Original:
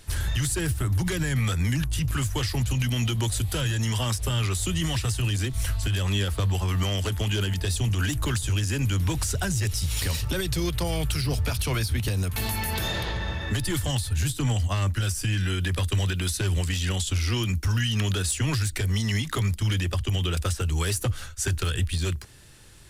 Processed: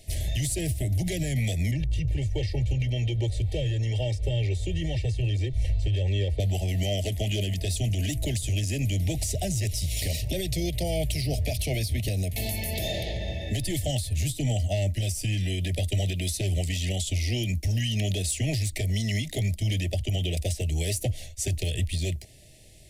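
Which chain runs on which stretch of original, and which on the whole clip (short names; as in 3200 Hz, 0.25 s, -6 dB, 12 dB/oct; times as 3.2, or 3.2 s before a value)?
1.71–6.4 tape spacing loss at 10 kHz 21 dB + comb 2.2 ms, depth 68%
whole clip: elliptic band-stop 740–2000 Hz, stop band 50 dB; bell 620 Hz +12 dB 0.22 oct; gain -1.5 dB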